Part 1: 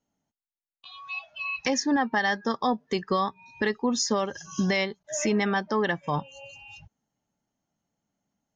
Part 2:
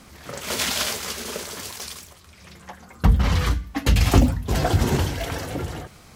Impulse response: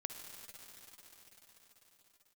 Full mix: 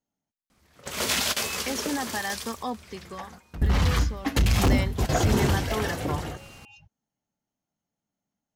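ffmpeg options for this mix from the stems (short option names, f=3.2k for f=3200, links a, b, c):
-filter_complex "[0:a]volume=3dB,afade=t=out:st=2.74:d=0.26:silence=0.375837,afade=t=in:st=4.27:d=0.29:silence=0.334965,asplit=2[a][b];[1:a]asoftclip=type=hard:threshold=-16dB,adelay=500,volume=-1.5dB,asplit=2[c][d];[d]volume=-18dB[e];[b]apad=whole_len=293269[f];[c][f]sidechaingate=range=-23dB:threshold=-54dB:ratio=16:detection=peak[g];[2:a]atrim=start_sample=2205[h];[e][h]afir=irnorm=-1:irlink=0[i];[a][g][i]amix=inputs=3:normalize=0"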